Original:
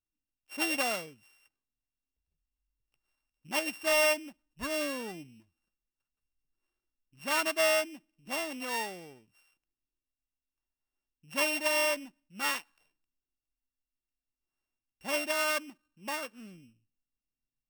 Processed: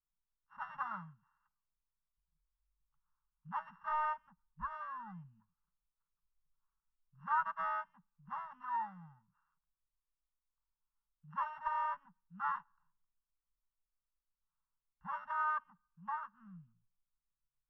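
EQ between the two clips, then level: elliptic band-stop 170–870 Hz, stop band 50 dB; LPF 1500 Hz 24 dB/oct; fixed phaser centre 470 Hz, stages 8; +3.5 dB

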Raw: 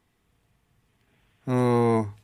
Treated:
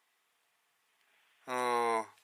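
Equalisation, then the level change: HPF 870 Hz 12 dB/oct; 0.0 dB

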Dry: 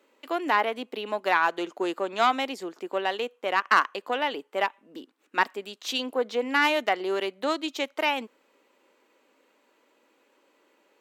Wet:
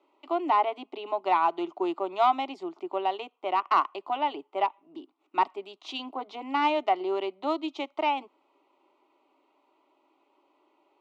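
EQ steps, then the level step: BPF 170–2200 Hz; low shelf 490 Hz -4.5 dB; fixed phaser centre 330 Hz, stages 8; +4.0 dB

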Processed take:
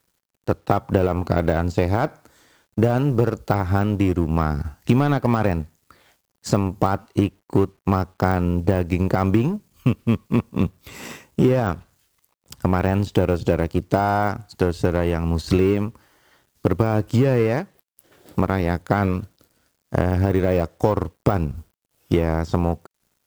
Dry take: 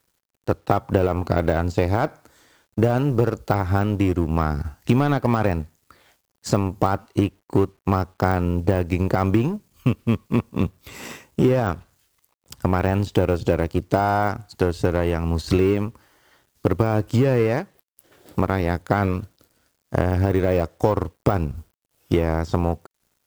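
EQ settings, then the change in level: bell 180 Hz +2.5 dB; 0.0 dB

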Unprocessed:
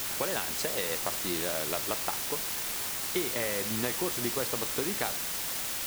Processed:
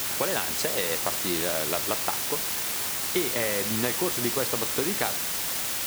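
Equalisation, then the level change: HPF 50 Hz; +4.5 dB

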